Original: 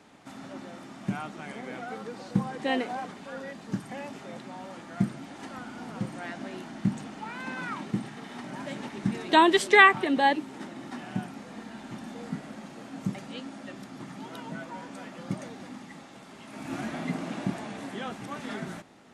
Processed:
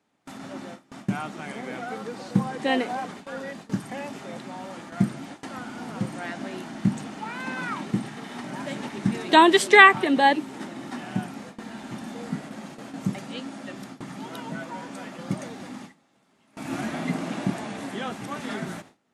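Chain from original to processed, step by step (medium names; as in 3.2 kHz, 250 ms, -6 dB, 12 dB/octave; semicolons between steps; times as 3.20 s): high-pass 59 Hz; gate with hold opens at -33 dBFS; treble shelf 11 kHz +6 dB; trim +4 dB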